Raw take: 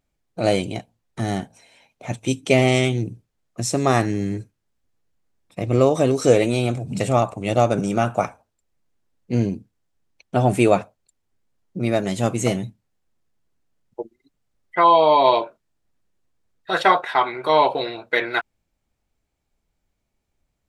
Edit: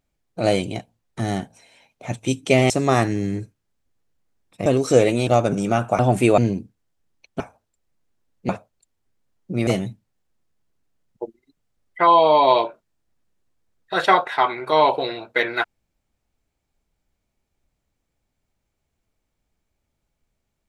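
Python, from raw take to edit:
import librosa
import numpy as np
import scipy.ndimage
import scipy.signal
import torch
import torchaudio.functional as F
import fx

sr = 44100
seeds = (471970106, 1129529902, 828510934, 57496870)

y = fx.edit(x, sr, fx.cut(start_s=2.7, length_s=0.98),
    fx.cut(start_s=5.64, length_s=0.36),
    fx.cut(start_s=6.61, length_s=0.92),
    fx.swap(start_s=8.25, length_s=1.09, other_s=10.36, other_length_s=0.39),
    fx.cut(start_s=11.93, length_s=0.51), tone=tone)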